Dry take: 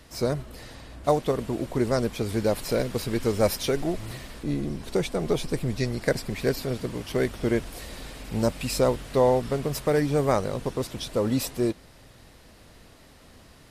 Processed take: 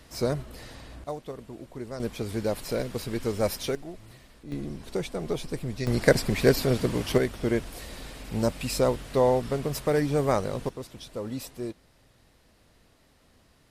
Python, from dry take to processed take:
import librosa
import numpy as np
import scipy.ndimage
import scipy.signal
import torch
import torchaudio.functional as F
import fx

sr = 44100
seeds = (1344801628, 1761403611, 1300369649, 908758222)

y = fx.gain(x, sr, db=fx.steps((0.0, -1.0), (1.04, -13.0), (2.0, -4.0), (3.75, -13.0), (4.52, -5.0), (5.87, 5.0), (7.18, -1.5), (10.69, -9.5)))